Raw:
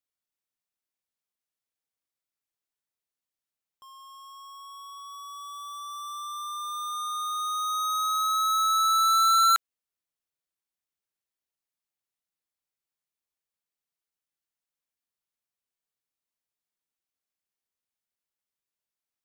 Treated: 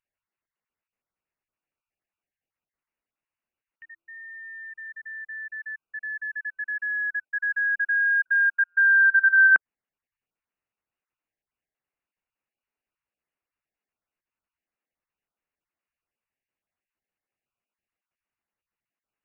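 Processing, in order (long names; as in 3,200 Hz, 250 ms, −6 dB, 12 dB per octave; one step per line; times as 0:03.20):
time-frequency cells dropped at random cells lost 24%
voice inversion scrambler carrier 2,900 Hz
level +6 dB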